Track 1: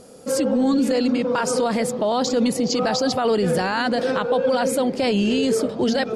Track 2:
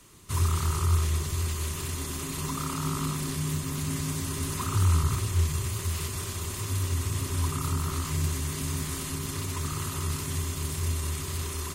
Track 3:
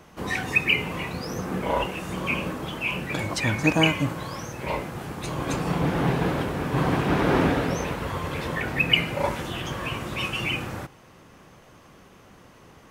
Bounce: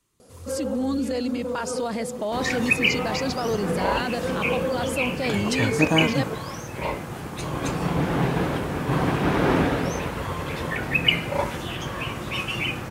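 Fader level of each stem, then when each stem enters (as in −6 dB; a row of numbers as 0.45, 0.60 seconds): −6.5, −18.0, +0.5 decibels; 0.20, 0.00, 2.15 seconds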